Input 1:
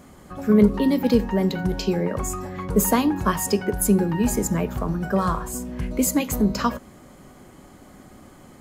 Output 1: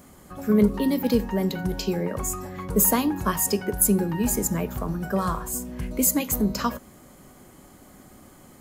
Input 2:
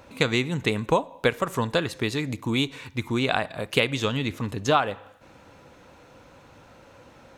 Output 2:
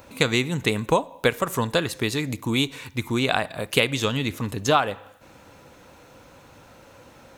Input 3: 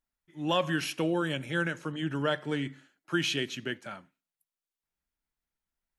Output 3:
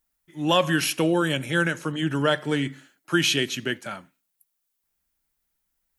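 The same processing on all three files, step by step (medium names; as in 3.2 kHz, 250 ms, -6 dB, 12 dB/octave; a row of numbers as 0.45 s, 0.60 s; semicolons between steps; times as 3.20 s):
treble shelf 8.6 kHz +12 dB; normalise loudness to -24 LUFS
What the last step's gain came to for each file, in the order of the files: -3.5 dB, +1.5 dB, +7.0 dB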